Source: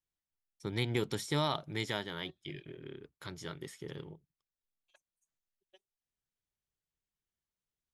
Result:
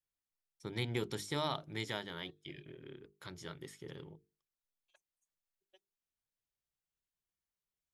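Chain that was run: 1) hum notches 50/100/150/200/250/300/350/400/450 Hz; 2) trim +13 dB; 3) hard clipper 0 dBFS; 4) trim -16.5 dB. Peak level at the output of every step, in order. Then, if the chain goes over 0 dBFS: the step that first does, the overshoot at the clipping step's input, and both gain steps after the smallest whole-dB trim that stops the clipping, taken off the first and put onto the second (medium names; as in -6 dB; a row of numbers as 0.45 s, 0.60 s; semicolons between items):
-18.0 dBFS, -5.0 dBFS, -5.0 dBFS, -21.5 dBFS; nothing clips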